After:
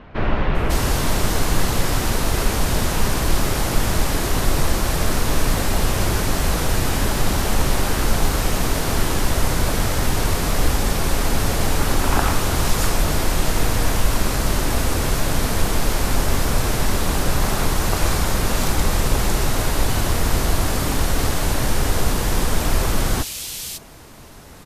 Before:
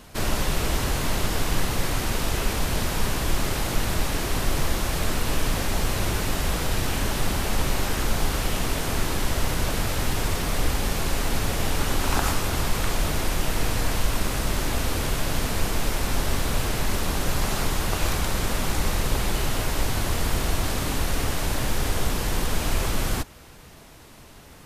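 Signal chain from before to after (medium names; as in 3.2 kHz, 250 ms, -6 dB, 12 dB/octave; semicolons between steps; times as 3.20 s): bands offset in time lows, highs 550 ms, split 2.8 kHz; trim +5.5 dB; Vorbis 128 kbps 32 kHz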